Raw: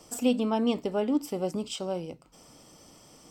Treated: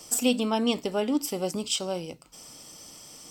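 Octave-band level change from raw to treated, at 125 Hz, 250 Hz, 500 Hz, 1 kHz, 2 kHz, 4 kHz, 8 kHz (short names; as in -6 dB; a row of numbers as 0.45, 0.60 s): 0.0, 0.0, +0.5, +2.0, +6.5, +8.0, +11.0 dB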